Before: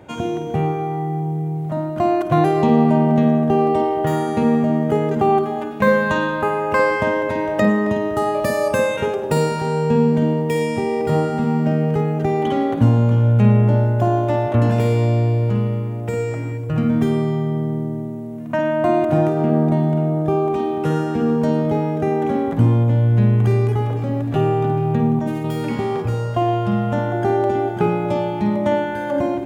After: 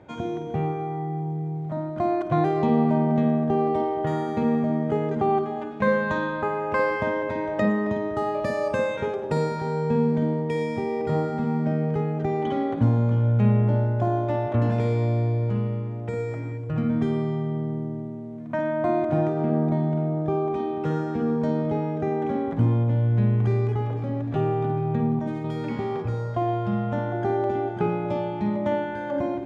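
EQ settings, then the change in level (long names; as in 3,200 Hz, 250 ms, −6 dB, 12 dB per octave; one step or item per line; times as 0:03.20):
high-frequency loss of the air 100 metres
notch filter 2,800 Hz, Q 17
−6.0 dB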